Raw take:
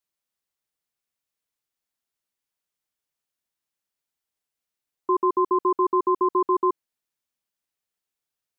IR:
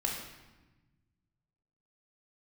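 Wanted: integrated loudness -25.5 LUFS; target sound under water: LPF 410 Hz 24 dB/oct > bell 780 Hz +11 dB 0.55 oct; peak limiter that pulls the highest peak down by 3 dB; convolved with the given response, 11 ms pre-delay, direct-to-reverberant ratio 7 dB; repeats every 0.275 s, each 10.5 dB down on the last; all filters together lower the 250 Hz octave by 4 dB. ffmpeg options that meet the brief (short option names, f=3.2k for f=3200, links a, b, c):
-filter_complex "[0:a]equalizer=f=250:t=o:g=-7,alimiter=limit=-18dB:level=0:latency=1,aecho=1:1:275|550|825:0.299|0.0896|0.0269,asplit=2[a][b];[1:a]atrim=start_sample=2205,adelay=11[c];[b][c]afir=irnorm=-1:irlink=0,volume=-12dB[d];[a][d]amix=inputs=2:normalize=0,lowpass=f=410:w=0.5412,lowpass=f=410:w=1.3066,equalizer=f=780:t=o:w=0.55:g=11,volume=3.5dB"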